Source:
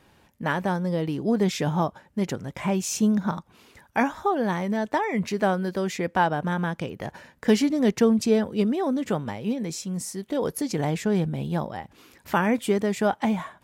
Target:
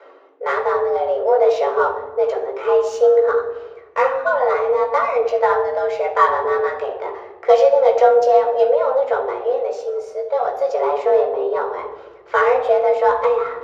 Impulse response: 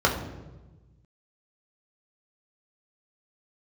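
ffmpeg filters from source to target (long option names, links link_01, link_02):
-filter_complex "[0:a]afreqshift=260,areverse,acompressor=mode=upward:threshold=-30dB:ratio=2.5,areverse,equalizer=frequency=320:width_type=o:width=0.32:gain=-9,adynamicsmooth=sensitivity=3:basefreq=2700[link_01];[1:a]atrim=start_sample=2205[link_02];[link_01][link_02]afir=irnorm=-1:irlink=0,volume=-11dB"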